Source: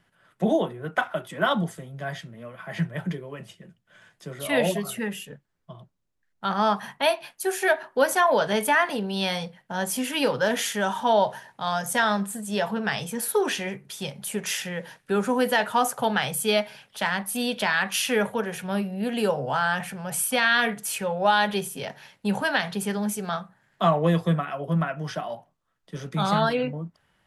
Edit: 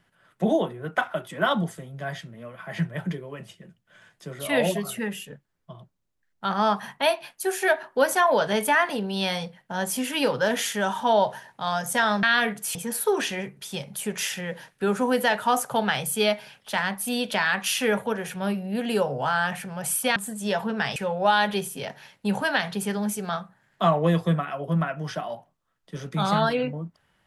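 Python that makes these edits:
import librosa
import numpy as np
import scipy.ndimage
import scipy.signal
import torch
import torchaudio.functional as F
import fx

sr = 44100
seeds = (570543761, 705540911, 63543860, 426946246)

y = fx.edit(x, sr, fx.swap(start_s=12.23, length_s=0.8, other_s=20.44, other_length_s=0.52), tone=tone)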